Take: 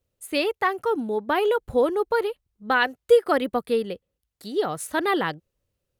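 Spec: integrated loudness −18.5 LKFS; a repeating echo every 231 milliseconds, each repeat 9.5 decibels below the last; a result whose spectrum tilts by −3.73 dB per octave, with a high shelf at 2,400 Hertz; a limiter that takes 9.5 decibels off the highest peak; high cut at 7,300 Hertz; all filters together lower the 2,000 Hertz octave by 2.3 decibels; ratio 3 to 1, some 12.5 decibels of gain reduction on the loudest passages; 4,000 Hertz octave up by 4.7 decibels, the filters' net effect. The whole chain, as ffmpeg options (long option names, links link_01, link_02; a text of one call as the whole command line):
ffmpeg -i in.wav -af "lowpass=7300,equalizer=frequency=2000:width_type=o:gain=-6.5,highshelf=frequency=2400:gain=5,equalizer=frequency=4000:width_type=o:gain=4.5,acompressor=threshold=-28dB:ratio=3,alimiter=level_in=0.5dB:limit=-24dB:level=0:latency=1,volume=-0.5dB,aecho=1:1:231|462|693|924:0.335|0.111|0.0365|0.012,volume=15.5dB" out.wav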